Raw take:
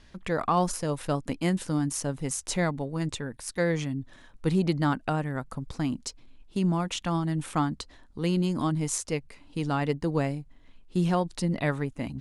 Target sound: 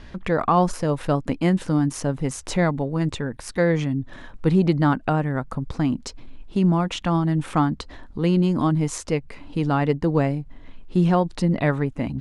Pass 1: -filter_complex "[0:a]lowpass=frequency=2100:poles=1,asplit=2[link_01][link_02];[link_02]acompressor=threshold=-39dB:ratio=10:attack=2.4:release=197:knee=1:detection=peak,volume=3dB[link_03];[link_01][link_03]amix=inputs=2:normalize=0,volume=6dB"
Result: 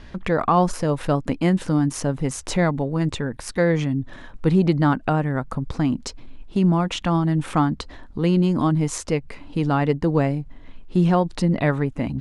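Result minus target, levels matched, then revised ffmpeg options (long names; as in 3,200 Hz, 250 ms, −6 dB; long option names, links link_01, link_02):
downward compressor: peak gain reduction −6 dB
-filter_complex "[0:a]lowpass=frequency=2100:poles=1,asplit=2[link_01][link_02];[link_02]acompressor=threshold=-45.5dB:ratio=10:attack=2.4:release=197:knee=1:detection=peak,volume=3dB[link_03];[link_01][link_03]amix=inputs=2:normalize=0,volume=6dB"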